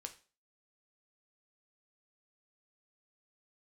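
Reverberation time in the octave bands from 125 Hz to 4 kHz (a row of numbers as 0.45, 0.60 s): 0.35, 0.40, 0.40, 0.35, 0.35, 0.35 s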